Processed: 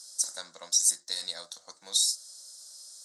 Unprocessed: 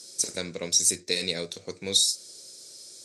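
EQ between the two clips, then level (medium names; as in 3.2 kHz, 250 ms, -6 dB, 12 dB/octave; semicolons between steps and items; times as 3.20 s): high-pass 660 Hz 12 dB/octave; static phaser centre 1 kHz, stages 4; 0.0 dB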